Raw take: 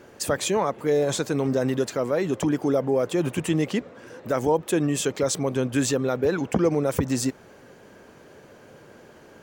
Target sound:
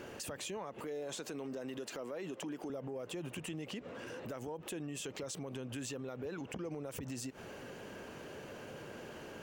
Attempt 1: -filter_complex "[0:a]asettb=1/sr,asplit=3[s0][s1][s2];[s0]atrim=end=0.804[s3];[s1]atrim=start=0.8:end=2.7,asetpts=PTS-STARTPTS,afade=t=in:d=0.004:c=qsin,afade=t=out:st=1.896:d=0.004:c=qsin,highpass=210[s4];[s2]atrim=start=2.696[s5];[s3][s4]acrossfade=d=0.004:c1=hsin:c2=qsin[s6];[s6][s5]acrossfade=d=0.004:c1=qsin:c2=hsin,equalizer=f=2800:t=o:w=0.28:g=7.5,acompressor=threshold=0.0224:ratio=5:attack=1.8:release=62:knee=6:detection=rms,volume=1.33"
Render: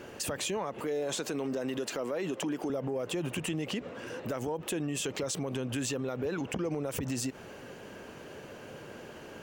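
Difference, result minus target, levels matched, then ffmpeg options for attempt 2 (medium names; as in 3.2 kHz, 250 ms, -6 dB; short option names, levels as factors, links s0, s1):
compression: peak gain reduction -9 dB
-filter_complex "[0:a]asettb=1/sr,asplit=3[s0][s1][s2];[s0]atrim=end=0.804[s3];[s1]atrim=start=0.8:end=2.7,asetpts=PTS-STARTPTS,afade=t=in:d=0.004:c=qsin,afade=t=out:st=1.896:d=0.004:c=qsin,highpass=210[s4];[s2]atrim=start=2.696[s5];[s3][s4]acrossfade=d=0.004:c1=hsin:c2=qsin[s6];[s6][s5]acrossfade=d=0.004:c1=qsin:c2=hsin,equalizer=f=2800:t=o:w=0.28:g=7.5,acompressor=threshold=0.00631:ratio=5:attack=1.8:release=62:knee=6:detection=rms,volume=1.33"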